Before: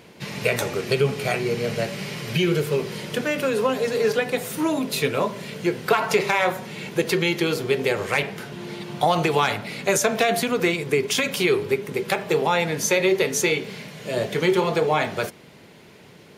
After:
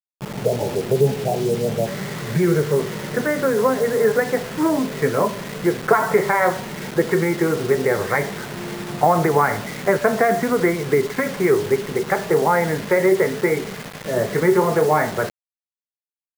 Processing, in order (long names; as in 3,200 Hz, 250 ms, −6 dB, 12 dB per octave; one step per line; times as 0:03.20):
Butterworth low-pass 930 Hz 96 dB per octave, from 0:01.86 2,100 Hz
bit-depth reduction 6 bits, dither none
level +4 dB